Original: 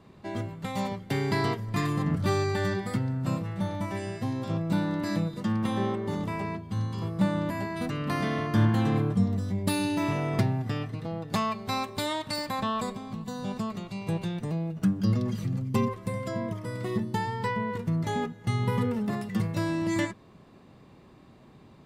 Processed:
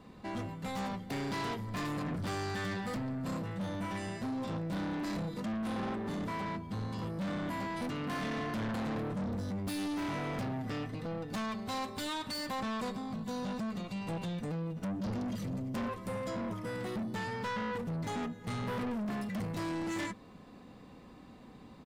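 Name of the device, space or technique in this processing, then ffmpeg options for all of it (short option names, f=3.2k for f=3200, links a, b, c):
saturation between pre-emphasis and de-emphasis: -af "highshelf=f=8.9k:g=10.5,aecho=1:1:4:0.46,asoftclip=type=tanh:threshold=-33.5dB,highshelf=f=8.9k:g=-10.5"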